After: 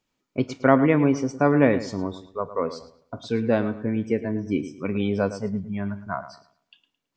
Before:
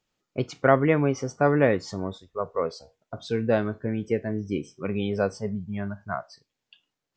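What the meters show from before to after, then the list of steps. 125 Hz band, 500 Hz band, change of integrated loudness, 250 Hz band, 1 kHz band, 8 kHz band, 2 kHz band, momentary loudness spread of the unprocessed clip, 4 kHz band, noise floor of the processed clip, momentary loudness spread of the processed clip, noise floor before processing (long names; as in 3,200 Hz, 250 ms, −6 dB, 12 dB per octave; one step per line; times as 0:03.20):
+1.0 dB, +0.5 dB, +2.0 dB, +5.0 dB, +1.0 dB, can't be measured, +0.5 dB, 13 LU, 0.0 dB, −80 dBFS, 14 LU, −84 dBFS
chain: hollow resonant body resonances 260/980/2,300 Hz, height 8 dB
on a send: feedback echo with a low-pass in the loop 109 ms, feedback 30%, low-pass 4,600 Hz, level −13 dB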